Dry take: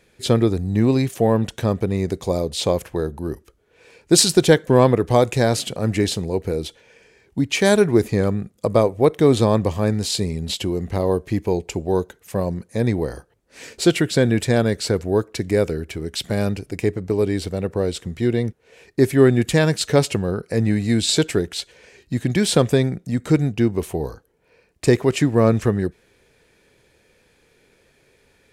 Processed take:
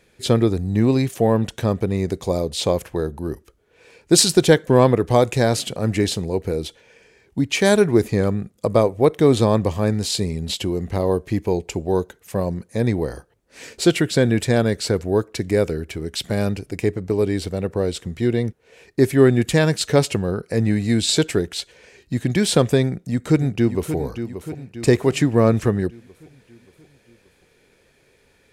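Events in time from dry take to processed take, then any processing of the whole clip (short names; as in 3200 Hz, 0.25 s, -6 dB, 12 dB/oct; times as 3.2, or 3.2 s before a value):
22.83–23.96 echo throw 0.58 s, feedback 55%, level -10 dB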